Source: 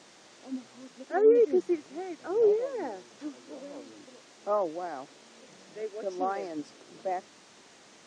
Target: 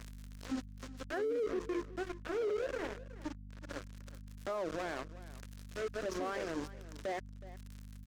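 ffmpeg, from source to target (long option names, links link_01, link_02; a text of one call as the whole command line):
ffmpeg -i in.wav -filter_complex "[0:a]adynamicequalizer=threshold=0.00141:dfrequency=3700:dqfactor=1.3:tfrequency=3700:tqfactor=1.3:attack=5:release=100:ratio=0.375:range=2:mode=cutabove:tftype=bell,acompressor=mode=upward:threshold=-40dB:ratio=2.5,bandreject=frequency=50:width_type=h:width=6,bandreject=frequency=100:width_type=h:width=6,bandreject=frequency=150:width_type=h:width=6,bandreject=frequency=200:width_type=h:width=6,bandreject=frequency=250:width_type=h:width=6,bandreject=frequency=300:width_type=h:width=6,bandreject=frequency=350:width_type=h:width=6,bandreject=frequency=400:width_type=h:width=6,bandreject=frequency=450:width_type=h:width=6,bandreject=frequency=500:width_type=h:width=6,asettb=1/sr,asplit=3[link_01][link_02][link_03];[link_01]atrim=end=1.434[link_04];[link_02]atrim=start=1.43:end=3.69,asetpts=PTS-STARTPTS,afade=type=in:duration=0.004:curve=qsin,afade=type=out:start_time=2.256:duration=0.004:curve=qsin,flanger=delay=6.6:depth=8.4:regen=28:speed=1.3:shape=triangular[link_05];[link_03]atrim=start=3.686[link_06];[link_04][link_05]acrossfade=duration=0.004:curve1=hsin:curve2=qsin[link_07];[link_07][link_06]acrossfade=duration=0.004:curve1=qsin:curve2=hsin,anlmdn=0.001,aeval=exprs='sgn(val(0))*max(abs(val(0))-0.00891,0)':channel_layout=same,aeval=exprs='val(0)+0.00126*(sin(2*PI*50*n/s)+sin(2*PI*2*50*n/s)/2+sin(2*PI*3*50*n/s)/3+sin(2*PI*4*50*n/s)/4+sin(2*PI*5*50*n/s)/5)':channel_layout=same,equalizer=frequency=125:width_type=o:width=0.33:gain=-7,equalizer=frequency=800:width_type=o:width=0.33:gain=-9,equalizer=frequency=1600:width_type=o:width=0.33:gain=3,alimiter=level_in=16dB:limit=-24dB:level=0:latency=1:release=32,volume=-16dB,aecho=1:1:370:0.141,volume=11dB" out.wav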